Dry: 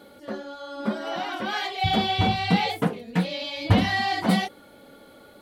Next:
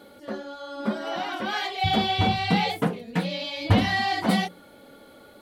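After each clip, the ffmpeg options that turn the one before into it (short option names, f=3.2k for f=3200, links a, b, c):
-af "bandreject=f=60:t=h:w=6,bandreject=f=120:t=h:w=6,bandreject=f=180:t=h:w=6"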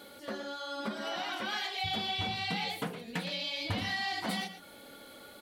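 -af "tiltshelf=f=1.4k:g=-5,acompressor=threshold=-35dB:ratio=3,aecho=1:1:116:0.251"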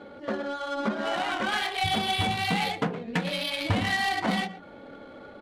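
-af "adynamicsmooth=sensitivity=6:basefreq=1.3k,volume=9dB"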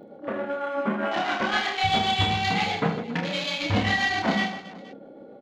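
-filter_complex "[0:a]afwtdn=0.0126,tremolo=f=7.7:d=0.55,asplit=2[a][b];[b]aecho=0:1:30|78|154.8|277.7|474.3:0.631|0.398|0.251|0.158|0.1[c];[a][c]amix=inputs=2:normalize=0,volume=3dB"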